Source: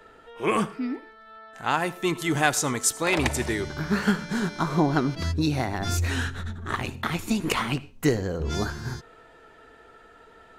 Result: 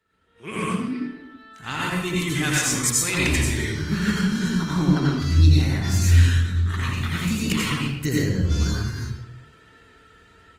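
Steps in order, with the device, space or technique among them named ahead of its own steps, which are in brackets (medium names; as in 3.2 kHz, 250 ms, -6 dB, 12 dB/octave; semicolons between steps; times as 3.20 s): amplifier tone stack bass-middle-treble 6-0-2; treble shelf 8.9 kHz -4 dB; de-hum 337.9 Hz, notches 11; far-field microphone of a smart speaker (reverberation RT60 0.80 s, pre-delay 80 ms, DRR -5 dB; high-pass 80 Hz 12 dB/octave; level rider gain up to 16 dB; Opus 24 kbps 48 kHz)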